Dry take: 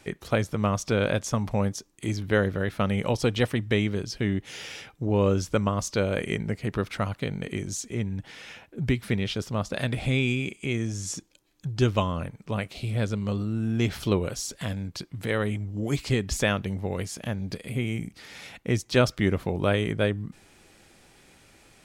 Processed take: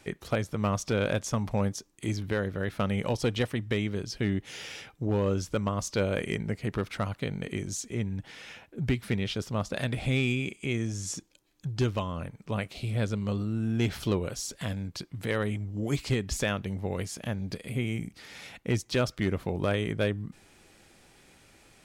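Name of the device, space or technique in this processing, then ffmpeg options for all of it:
limiter into clipper: -af "alimiter=limit=-14dB:level=0:latency=1:release=429,asoftclip=type=hard:threshold=-17dB,volume=-2dB"

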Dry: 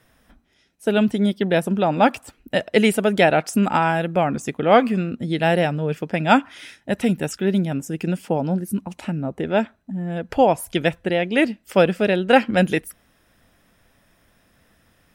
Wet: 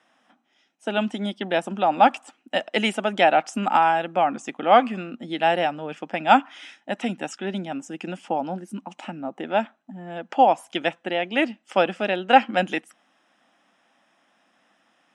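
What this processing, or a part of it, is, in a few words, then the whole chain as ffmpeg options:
television speaker: -filter_complex "[0:a]highpass=frequency=230:width=0.5412,highpass=frequency=230:width=1.3066,equalizer=frequency=430:width_type=q:width=4:gain=-9,equalizer=frequency=790:width_type=q:width=4:gain=8,equalizer=frequency=1200:width_type=q:width=4:gain=4,equalizer=frequency=3000:width_type=q:width=4:gain=5,equalizer=frequency=4400:width_type=q:width=4:gain=-6,lowpass=frequency=7800:width=0.5412,lowpass=frequency=7800:width=1.3066,asettb=1/sr,asplit=3[link_01][link_02][link_03];[link_01]atrim=end=1.004[link_04];[link_02]atrim=start=1:end=2.9,asetpts=PTS-STARTPTS,afade=type=in:duration=0.004:curve=qsin,afade=type=out:start_time=1.896:duration=0.004:curve=qsin,highshelf=frequency=7000:gain=5[link_05];[link_03]atrim=start=2.896[link_06];[link_04][link_05]acrossfade=duration=0.004:curve1=hsin:curve2=qsin[link_07];[link_07][link_06]acrossfade=duration=0.004:curve1=qsin:curve2=hsin,volume=-3.5dB"

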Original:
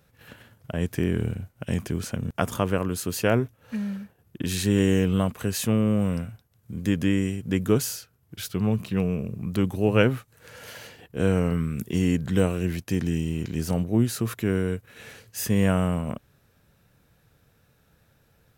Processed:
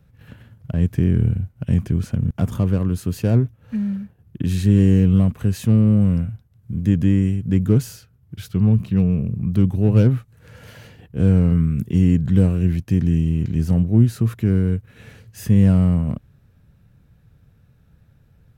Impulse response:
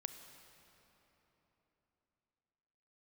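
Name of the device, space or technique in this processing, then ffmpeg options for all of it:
one-band saturation: -filter_complex "[0:a]bass=frequency=250:gain=14,treble=frequency=4000:gain=-5,acrossover=split=560|4800[link_01][link_02][link_03];[link_02]asoftclip=type=tanh:threshold=-28.5dB[link_04];[link_01][link_04][link_03]amix=inputs=3:normalize=0,volume=-2.5dB"

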